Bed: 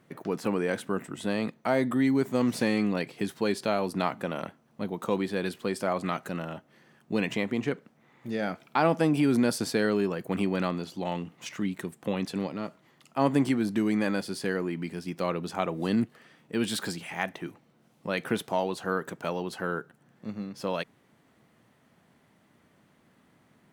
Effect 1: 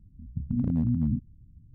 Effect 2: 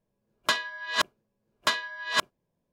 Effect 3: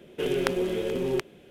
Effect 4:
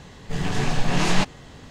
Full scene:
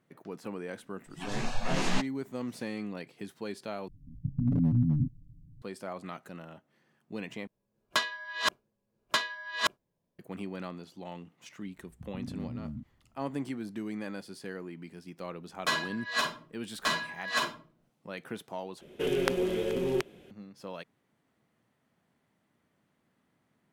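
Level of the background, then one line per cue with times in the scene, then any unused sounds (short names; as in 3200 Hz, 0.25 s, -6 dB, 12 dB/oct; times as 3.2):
bed -11 dB
0.77 add 4 -8.5 dB + spectral noise reduction 23 dB
3.88 replace with 1 -2.5 dB + comb 7 ms, depth 89%
7.47 replace with 2 -3 dB
11.64 add 1 -8.5 dB + tilt +2 dB/oct
15.18 add 2 -11.5 dB + shoebox room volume 320 m³, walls furnished, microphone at 6.1 m
18.81 replace with 3 -2 dB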